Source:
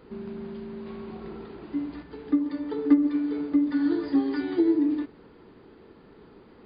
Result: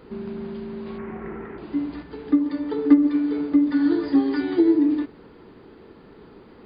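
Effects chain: 0.98–1.58 s: resonant high shelf 2.9 kHz -14 dB, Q 3; trim +4.5 dB

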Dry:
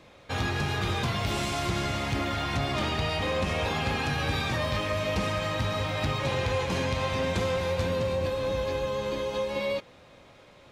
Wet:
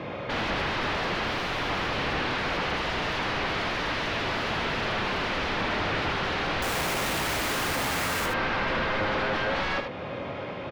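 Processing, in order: high-pass 100 Hz 12 dB/octave; band-stop 3.9 kHz; in parallel at 0 dB: compression, threshold -40 dBFS, peak gain reduction 14.5 dB; on the sum: sine folder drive 15 dB, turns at -17.5 dBFS; distance through air 310 m; 6.62–8.26 s: Schmitt trigger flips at -33.5 dBFS; delay 78 ms -7 dB; trim -5 dB

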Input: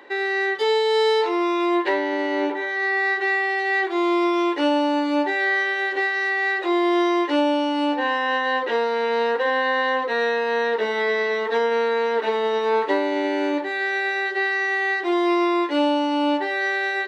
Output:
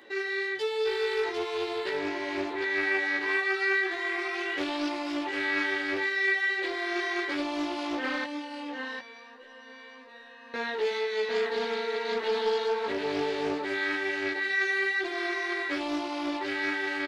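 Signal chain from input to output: peaking EQ 900 Hz -11 dB 3 oct; peak limiter -26 dBFS, peak gain reduction 9 dB; 3.22–4.90 s: painted sound rise 990–3900 Hz -46 dBFS; 8.24–10.54 s: feedback comb 580 Hz, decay 0.39 s, mix 90%; flange 1.8 Hz, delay 8 ms, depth 3.7 ms, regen +36%; doubling 16 ms -2 dB; delay 750 ms -4.5 dB; loudspeaker Doppler distortion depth 0.26 ms; trim +4 dB

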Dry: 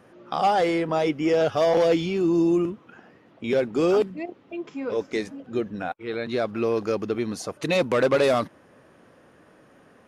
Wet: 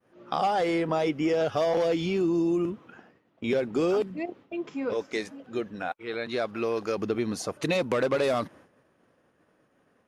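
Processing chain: expander -45 dBFS; 4.93–6.98 s: bass shelf 400 Hz -8 dB; compression, threshold -22 dBFS, peak gain reduction 6.5 dB

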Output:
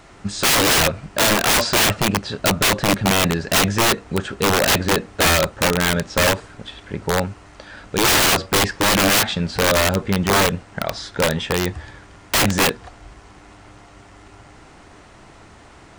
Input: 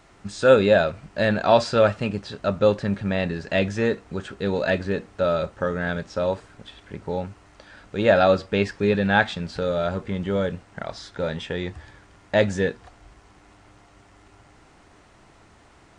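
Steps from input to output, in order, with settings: integer overflow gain 18.5 dB; trim +8 dB

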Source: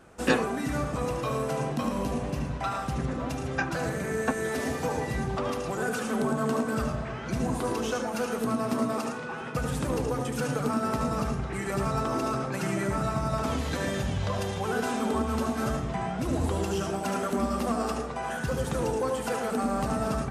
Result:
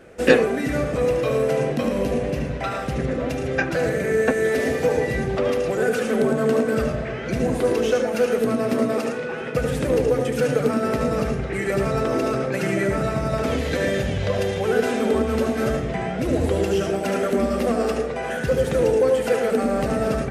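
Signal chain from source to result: graphic EQ 500/1000/2000/8000 Hz +10/-9/+7/-3 dB; trim +4 dB

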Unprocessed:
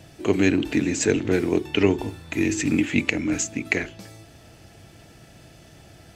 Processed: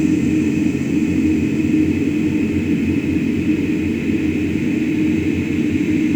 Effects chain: local Wiener filter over 15 samples; bass shelf 350 Hz +6.5 dB; companded quantiser 8-bit; on a send: echo that smears into a reverb 460 ms, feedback 46%, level -6.5 dB; on the sum: Paulstretch 48×, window 0.50 s, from 2.74 s

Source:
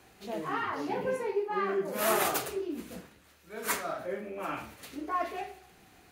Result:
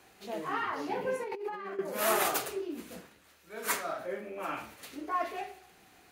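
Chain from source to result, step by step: bass shelf 210 Hz -8 dB; 1.23–1.79 s: compressor with a negative ratio -39 dBFS, ratio -1

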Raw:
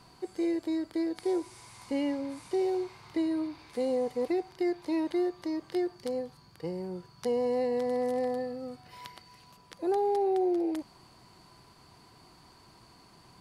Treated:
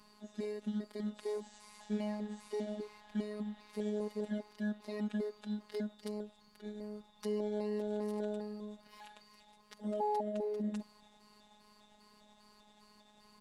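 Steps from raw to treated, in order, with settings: pitch shift switched off and on -4 st, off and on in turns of 200 ms; comb 3.7 ms, depth 41%; robot voice 210 Hz; trim -4 dB

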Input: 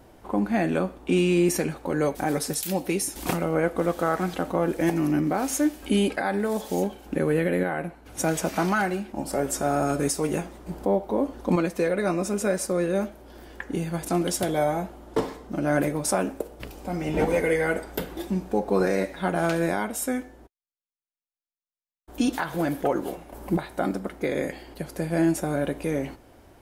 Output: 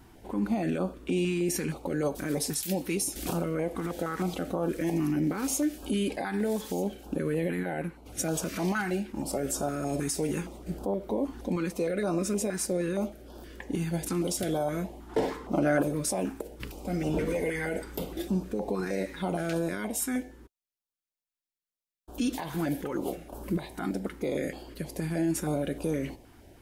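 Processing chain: peak limiter -19.5 dBFS, peak gain reduction 8.5 dB; 15.09–15.83 s: peaking EQ 1 kHz +9.5 dB 2.5 oct; step-sequenced notch 6.4 Hz 560–2000 Hz

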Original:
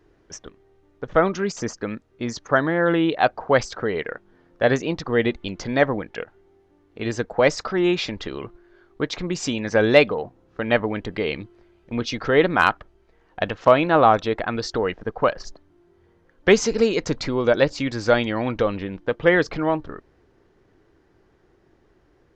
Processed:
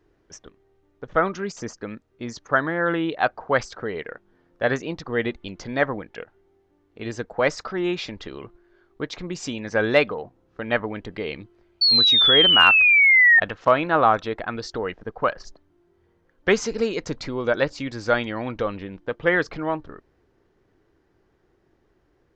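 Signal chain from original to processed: painted sound fall, 11.81–13.40 s, 1.8–4.5 kHz -12 dBFS; dynamic bell 1.4 kHz, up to +6 dB, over -29 dBFS, Q 1.2; trim -5 dB

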